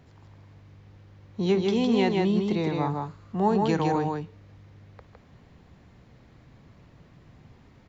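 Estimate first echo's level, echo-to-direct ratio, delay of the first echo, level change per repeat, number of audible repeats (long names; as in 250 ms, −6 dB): −19.0 dB, −3.0 dB, 56 ms, repeats not evenly spaced, 2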